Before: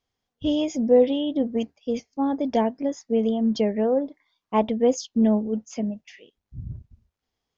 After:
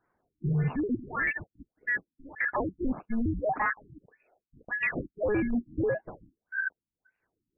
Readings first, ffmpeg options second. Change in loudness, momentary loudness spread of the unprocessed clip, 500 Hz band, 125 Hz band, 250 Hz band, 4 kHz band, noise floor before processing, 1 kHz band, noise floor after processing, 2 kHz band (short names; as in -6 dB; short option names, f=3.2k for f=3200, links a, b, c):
-7.0 dB, 15 LU, -11.0 dB, n/a, -10.0 dB, under -25 dB, -84 dBFS, -4.5 dB, under -85 dBFS, +15.5 dB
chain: -af "afftfilt=real='real(if(lt(b,272),68*(eq(floor(b/68),0)*2+eq(floor(b/68),1)*0+eq(floor(b/68),2)*3+eq(floor(b/68),3)*1)+mod(b,68),b),0)':imag='imag(if(lt(b,272),68*(eq(floor(b/68),0)*2+eq(floor(b/68),1)*0+eq(floor(b/68),2)*3+eq(floor(b/68),3)*1)+mod(b,68),b),0)':win_size=2048:overlap=0.75,areverse,acompressor=threshold=-31dB:ratio=4,areverse,acrusher=samples=13:mix=1:aa=0.000001:lfo=1:lforange=20.8:lforate=0.4,asoftclip=type=hard:threshold=-29.5dB,afftfilt=real='re*lt(b*sr/1024,320*pow(2900/320,0.5+0.5*sin(2*PI*1.7*pts/sr)))':imag='im*lt(b*sr/1024,320*pow(2900/320,0.5+0.5*sin(2*PI*1.7*pts/sr)))':win_size=1024:overlap=0.75,volume=6.5dB"